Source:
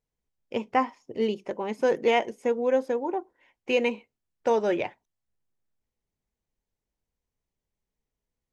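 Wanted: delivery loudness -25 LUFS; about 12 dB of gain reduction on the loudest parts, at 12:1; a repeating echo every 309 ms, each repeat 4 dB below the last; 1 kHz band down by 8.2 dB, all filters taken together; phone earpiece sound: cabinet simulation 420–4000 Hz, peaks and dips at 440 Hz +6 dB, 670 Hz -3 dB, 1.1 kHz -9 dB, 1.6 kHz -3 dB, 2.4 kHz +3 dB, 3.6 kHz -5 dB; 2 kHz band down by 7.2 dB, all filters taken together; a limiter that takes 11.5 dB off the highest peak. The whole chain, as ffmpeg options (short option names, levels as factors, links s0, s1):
-af "equalizer=f=1000:t=o:g=-5.5,equalizer=f=2000:t=o:g=-8.5,acompressor=threshold=0.0251:ratio=12,alimiter=level_in=2.37:limit=0.0631:level=0:latency=1,volume=0.422,highpass=420,equalizer=f=440:t=q:w=4:g=6,equalizer=f=670:t=q:w=4:g=-3,equalizer=f=1100:t=q:w=4:g=-9,equalizer=f=1600:t=q:w=4:g=-3,equalizer=f=2400:t=q:w=4:g=3,equalizer=f=3600:t=q:w=4:g=-5,lowpass=f=4000:w=0.5412,lowpass=f=4000:w=1.3066,aecho=1:1:309|618|927|1236|1545|1854|2163|2472|2781:0.631|0.398|0.25|0.158|0.0994|0.0626|0.0394|0.0249|0.0157,volume=6.68"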